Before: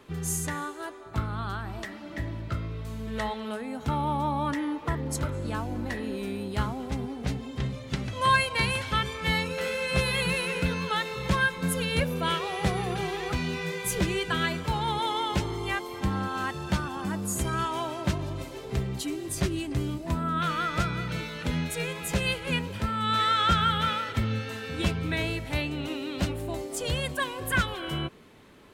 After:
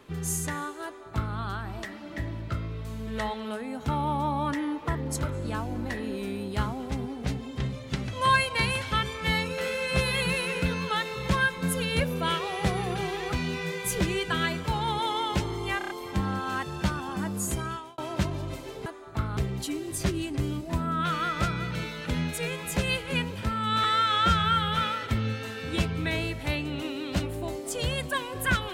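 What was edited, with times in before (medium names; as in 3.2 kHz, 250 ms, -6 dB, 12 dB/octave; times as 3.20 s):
0.85–1.36 s: copy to 18.74 s
15.78 s: stutter 0.03 s, 5 plays
17.35–17.86 s: fade out
23.21–23.83 s: stretch 1.5×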